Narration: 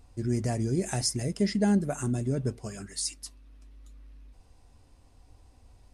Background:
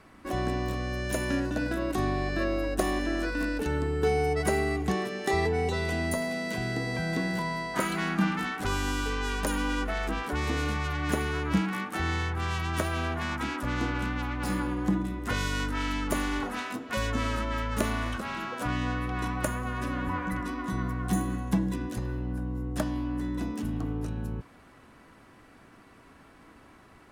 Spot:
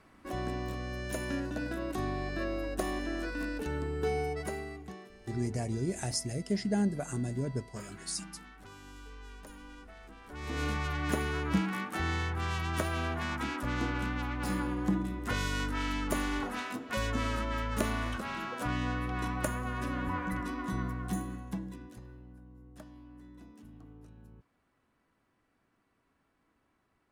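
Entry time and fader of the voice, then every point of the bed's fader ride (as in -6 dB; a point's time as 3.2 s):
5.10 s, -5.0 dB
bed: 4.19 s -6 dB
5.14 s -21 dB
10.18 s -21 dB
10.63 s -3 dB
20.77 s -3 dB
22.41 s -20.5 dB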